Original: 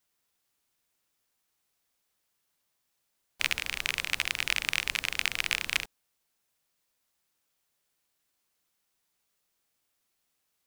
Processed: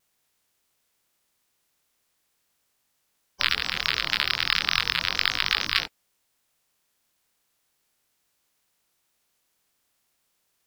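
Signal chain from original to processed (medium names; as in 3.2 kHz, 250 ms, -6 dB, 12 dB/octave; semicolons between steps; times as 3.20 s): coarse spectral quantiser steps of 30 dB; chorus 0.35 Hz, delay 19.5 ms, depth 7.2 ms; vibrato with a chosen wave saw down 6.6 Hz, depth 100 cents; trim +9 dB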